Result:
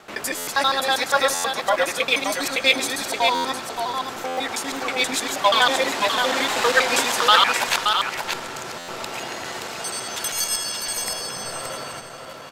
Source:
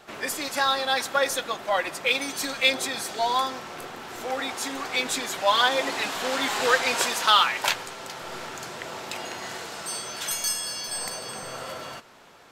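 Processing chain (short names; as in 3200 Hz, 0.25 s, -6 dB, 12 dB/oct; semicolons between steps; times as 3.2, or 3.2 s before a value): local time reversal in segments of 80 ms; echo 0.575 s -5.5 dB; stuck buffer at 0.37/1.34/3.34/4.27/8.78, samples 512, times 8; gain +3.5 dB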